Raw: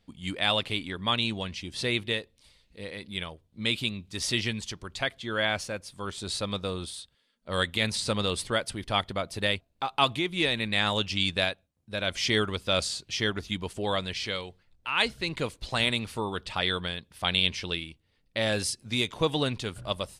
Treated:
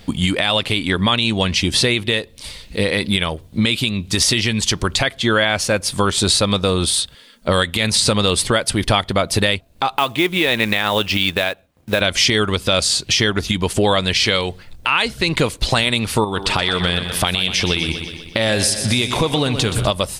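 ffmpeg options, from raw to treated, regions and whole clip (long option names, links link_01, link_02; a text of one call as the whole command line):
ffmpeg -i in.wav -filter_complex "[0:a]asettb=1/sr,asplit=3[link_01][link_02][link_03];[link_01]atrim=end=9.984[link_04];[link_02]atrim=start=9.98:end=12.01,asetpts=PTS-STARTPTS,afade=type=in:duration=0.004:curve=qsin,afade=type=out:start_time=2.026:duration=0.004:curve=qsin,bass=frequency=250:gain=-7,treble=frequency=4000:gain=-12,acrusher=bits=5:mode=log:mix=0:aa=0.000001[link_05];[link_03]atrim=start=12.006[link_06];[link_04][link_05]acrossfade=duration=0.004:curve1=hsin:curve2=qsin[link_07];[link_07][link_06]acrossfade=duration=0.004:curve1=qsin:curve2=hsin,asettb=1/sr,asplit=3[link_08][link_09][link_10];[link_08]atrim=end=16.244[link_11];[link_09]atrim=start=16.24:end=19.87,asetpts=PTS-STARTPTS,afade=type=in:duration=0.004:curve=qsin,afade=type=out:start_time=3.626:duration=0.004:curve=qsin,acompressor=threshold=-39dB:ratio=2.5:attack=3.2:release=140:knee=1:detection=peak,aecho=1:1:124|248|372|496|620|744:0.282|0.161|0.0916|0.0522|0.0298|0.017,atrim=end_sample=160083[link_12];[link_10]atrim=start=19.866[link_13];[link_11][link_12]acrossfade=duration=0.004:curve1=hsin:curve2=qsin[link_14];[link_14][link_13]acrossfade=duration=0.004:curve1=qsin:curve2=hsin,highshelf=frequency=8100:gain=4,acompressor=threshold=-40dB:ratio=4,alimiter=level_in=29dB:limit=-1dB:release=50:level=0:latency=1,volume=-3.5dB" out.wav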